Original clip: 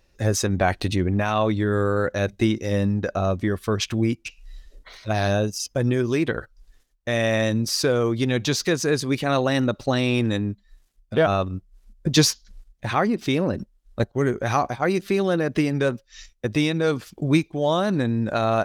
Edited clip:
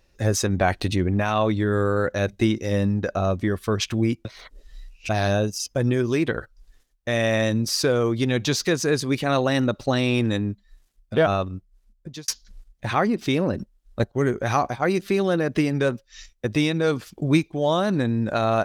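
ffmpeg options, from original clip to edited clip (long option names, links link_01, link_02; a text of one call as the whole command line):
ffmpeg -i in.wav -filter_complex "[0:a]asplit=4[link_01][link_02][link_03][link_04];[link_01]atrim=end=4.252[link_05];[link_02]atrim=start=4.248:end=5.092,asetpts=PTS-STARTPTS,areverse[link_06];[link_03]atrim=start=5.088:end=12.28,asetpts=PTS-STARTPTS,afade=type=out:start_time=6.142:duration=1.05[link_07];[link_04]atrim=start=12.28,asetpts=PTS-STARTPTS,afade=type=in:duration=0.004:curve=hsin[link_08];[link_05][link_06]acrossfade=duration=0.004:curve1=hsin:curve2=hsin[link_09];[link_07][link_08]concat=n=2:v=0:a=1[link_10];[link_09][link_10]acrossfade=duration=0.004:curve1=hsin:curve2=hsin" out.wav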